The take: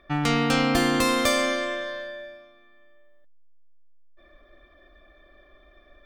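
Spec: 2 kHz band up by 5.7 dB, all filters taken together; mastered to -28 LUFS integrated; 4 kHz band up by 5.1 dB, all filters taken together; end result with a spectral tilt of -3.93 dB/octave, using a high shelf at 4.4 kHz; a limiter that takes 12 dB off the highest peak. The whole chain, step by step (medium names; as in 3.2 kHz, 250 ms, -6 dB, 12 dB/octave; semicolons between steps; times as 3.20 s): peaking EQ 2 kHz +6 dB; peaking EQ 4 kHz +6.5 dB; treble shelf 4.4 kHz -4.5 dB; trim -2.5 dB; peak limiter -19.5 dBFS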